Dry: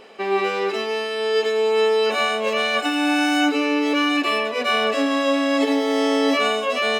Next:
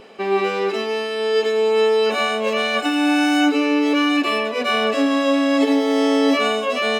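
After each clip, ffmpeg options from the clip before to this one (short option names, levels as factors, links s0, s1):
-af "lowshelf=f=200:g=10.5,bandreject=f=1900:w=26"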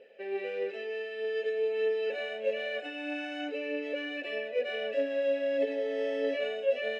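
-filter_complex "[0:a]asplit=3[s0][s1][s2];[s0]bandpass=f=530:t=q:w=8,volume=1[s3];[s1]bandpass=f=1840:t=q:w=8,volume=0.501[s4];[s2]bandpass=f=2480:t=q:w=8,volume=0.355[s5];[s3][s4][s5]amix=inputs=3:normalize=0,aphaser=in_gain=1:out_gain=1:delay=3:decay=0.28:speed=1.6:type=triangular,volume=0.668"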